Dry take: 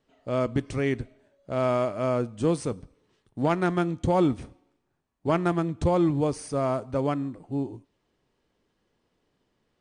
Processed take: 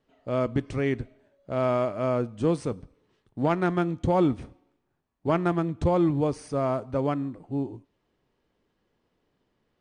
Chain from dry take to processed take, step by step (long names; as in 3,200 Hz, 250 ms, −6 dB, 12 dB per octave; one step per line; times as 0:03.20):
high-shelf EQ 6,200 Hz −10.5 dB